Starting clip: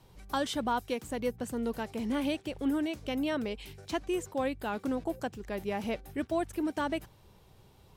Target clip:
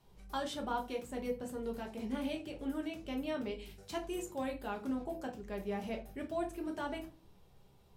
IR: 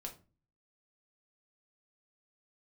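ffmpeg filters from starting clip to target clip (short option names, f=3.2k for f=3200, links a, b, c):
-filter_complex "[0:a]asettb=1/sr,asplit=3[a][b][c];[a]atrim=end=3.704[d];[b]atrim=start=3.7:end=4.52,asetpts=PTS-STARTPTS,afade=t=in:d=0.004:c=qsin,afade=t=out:st=0.816:d=0.004:c=qsin,highshelf=f=6.2k:g=7.5[e];[c]atrim=start=4.516[f];[d][e]acrossfade=d=0.004:c1=hsin:c2=qsin[g];[g][f]acrossfade=d=0.004:c1=qsin:c2=hsin[h];[1:a]atrim=start_sample=2205[i];[h][i]afir=irnorm=-1:irlink=0,volume=-3.5dB"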